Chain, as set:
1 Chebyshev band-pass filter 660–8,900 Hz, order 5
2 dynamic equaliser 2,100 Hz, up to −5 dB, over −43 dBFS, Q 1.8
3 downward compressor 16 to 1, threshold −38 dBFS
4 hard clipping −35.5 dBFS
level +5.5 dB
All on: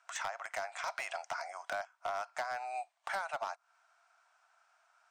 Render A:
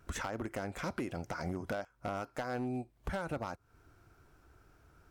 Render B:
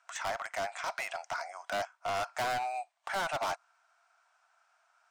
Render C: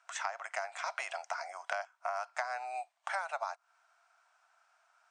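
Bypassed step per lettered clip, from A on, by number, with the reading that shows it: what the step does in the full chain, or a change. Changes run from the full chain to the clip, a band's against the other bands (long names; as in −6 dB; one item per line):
1, 250 Hz band +30.5 dB
3, average gain reduction 6.5 dB
4, distortion level −13 dB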